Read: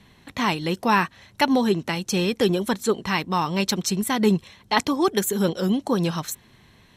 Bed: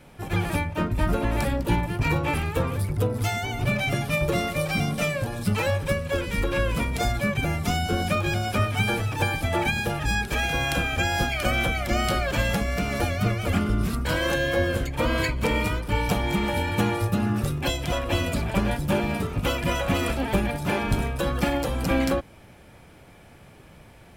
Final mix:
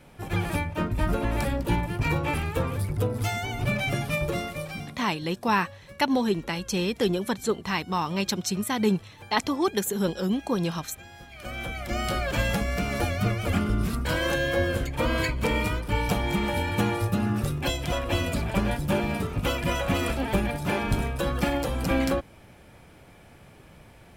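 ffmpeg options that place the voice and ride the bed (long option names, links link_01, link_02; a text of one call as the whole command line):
ffmpeg -i stem1.wav -i stem2.wav -filter_complex "[0:a]adelay=4600,volume=-4dB[link_01];[1:a]volume=19dB,afade=type=out:start_time=4.06:duration=0.99:silence=0.0944061,afade=type=in:start_time=11.27:duration=1.11:silence=0.0891251[link_02];[link_01][link_02]amix=inputs=2:normalize=0" out.wav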